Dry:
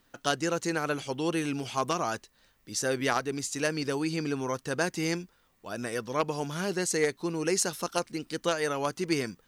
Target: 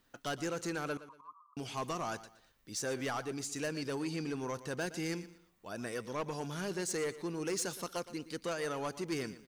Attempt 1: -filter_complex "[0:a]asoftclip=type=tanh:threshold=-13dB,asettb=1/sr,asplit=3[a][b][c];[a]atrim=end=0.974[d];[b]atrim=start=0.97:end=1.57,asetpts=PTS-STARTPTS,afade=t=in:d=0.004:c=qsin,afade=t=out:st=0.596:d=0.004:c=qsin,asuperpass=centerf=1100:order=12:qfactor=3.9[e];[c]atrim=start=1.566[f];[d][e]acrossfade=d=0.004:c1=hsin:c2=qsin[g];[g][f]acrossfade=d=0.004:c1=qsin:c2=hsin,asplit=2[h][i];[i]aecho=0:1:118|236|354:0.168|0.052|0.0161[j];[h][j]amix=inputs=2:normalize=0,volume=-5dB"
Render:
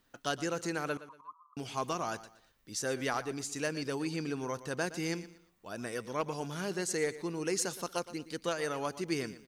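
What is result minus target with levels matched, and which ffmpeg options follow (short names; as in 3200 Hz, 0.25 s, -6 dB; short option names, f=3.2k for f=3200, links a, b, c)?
soft clip: distortion -13 dB
-filter_complex "[0:a]asoftclip=type=tanh:threshold=-25dB,asettb=1/sr,asplit=3[a][b][c];[a]atrim=end=0.974[d];[b]atrim=start=0.97:end=1.57,asetpts=PTS-STARTPTS,afade=t=in:d=0.004:c=qsin,afade=t=out:st=0.596:d=0.004:c=qsin,asuperpass=centerf=1100:order=12:qfactor=3.9[e];[c]atrim=start=1.566[f];[d][e]acrossfade=d=0.004:c1=hsin:c2=qsin[g];[g][f]acrossfade=d=0.004:c1=qsin:c2=hsin,asplit=2[h][i];[i]aecho=0:1:118|236|354:0.168|0.052|0.0161[j];[h][j]amix=inputs=2:normalize=0,volume=-5dB"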